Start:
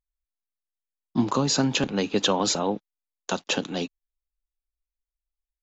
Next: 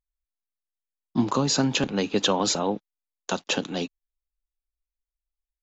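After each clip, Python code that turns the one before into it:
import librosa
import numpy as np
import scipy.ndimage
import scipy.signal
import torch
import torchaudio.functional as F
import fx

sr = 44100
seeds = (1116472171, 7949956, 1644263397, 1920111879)

y = x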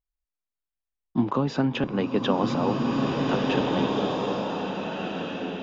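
y = fx.air_absorb(x, sr, metres=340.0)
y = fx.notch(y, sr, hz=4200.0, q=8.1)
y = fx.rev_bloom(y, sr, seeds[0], attack_ms=1790, drr_db=-2.0)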